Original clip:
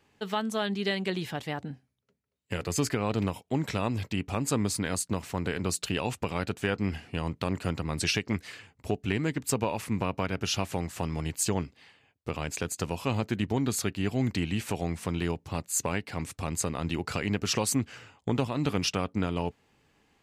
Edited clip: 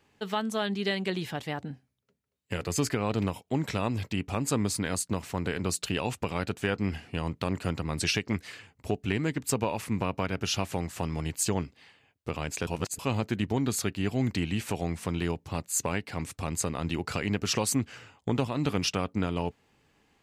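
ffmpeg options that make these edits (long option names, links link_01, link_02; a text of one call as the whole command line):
ffmpeg -i in.wav -filter_complex "[0:a]asplit=3[link_01][link_02][link_03];[link_01]atrim=end=12.672[link_04];[link_02]atrim=start=12.668:end=12.992,asetpts=PTS-STARTPTS,areverse[link_05];[link_03]atrim=start=12.988[link_06];[link_04][link_05]acrossfade=duration=0.004:curve1=hsin:curve2=hsin[link_07];[link_07][link_06]acrossfade=duration=0.004:curve1=hsin:curve2=hsin" out.wav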